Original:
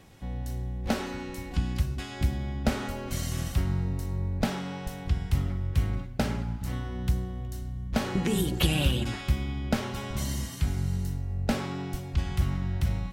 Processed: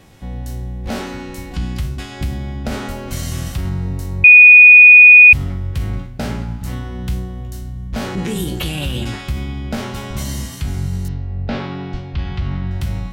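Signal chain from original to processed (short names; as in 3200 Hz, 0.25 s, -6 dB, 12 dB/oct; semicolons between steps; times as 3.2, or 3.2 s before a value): spectral trails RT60 0.32 s; 11.08–12.71 LPF 4400 Hz 24 dB/oct; limiter -19.5 dBFS, peak gain reduction 9.5 dB; 4.24–5.33 bleep 2470 Hz -7.5 dBFS; gain +6.5 dB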